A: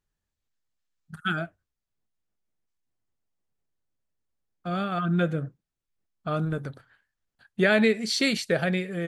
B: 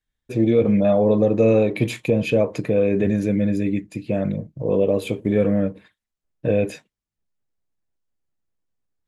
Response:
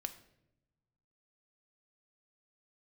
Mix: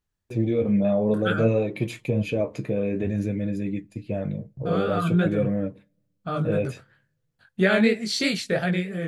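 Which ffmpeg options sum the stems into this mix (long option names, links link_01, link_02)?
-filter_complex "[0:a]flanger=delay=15.5:depth=7.4:speed=3,volume=2.5dB,asplit=2[link_01][link_02];[link_02]volume=-22.5dB[link_03];[1:a]agate=range=-27dB:threshold=-37dB:ratio=16:detection=peak,flanger=delay=5.5:depth=9.6:regen=49:speed=0.55:shape=sinusoidal,volume=-3.5dB,asplit=2[link_04][link_05];[link_05]volume=-21dB[link_06];[2:a]atrim=start_sample=2205[link_07];[link_03][link_06]amix=inputs=2:normalize=0[link_08];[link_08][link_07]afir=irnorm=-1:irlink=0[link_09];[link_01][link_04][link_09]amix=inputs=3:normalize=0,equalizer=frequency=100:width_type=o:width=1.5:gain=4.5"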